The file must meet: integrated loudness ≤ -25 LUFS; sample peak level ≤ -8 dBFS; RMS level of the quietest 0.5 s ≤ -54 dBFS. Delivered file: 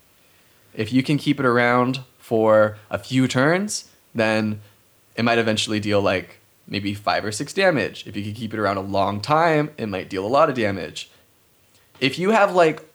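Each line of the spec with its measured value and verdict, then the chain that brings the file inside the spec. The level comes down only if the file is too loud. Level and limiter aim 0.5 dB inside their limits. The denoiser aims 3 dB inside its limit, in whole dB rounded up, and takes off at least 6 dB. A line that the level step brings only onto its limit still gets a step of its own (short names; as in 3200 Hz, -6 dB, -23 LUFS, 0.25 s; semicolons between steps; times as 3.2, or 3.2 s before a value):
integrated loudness -21.0 LUFS: fail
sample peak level -3.5 dBFS: fail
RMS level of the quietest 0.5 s -58 dBFS: OK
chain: gain -4.5 dB; limiter -8.5 dBFS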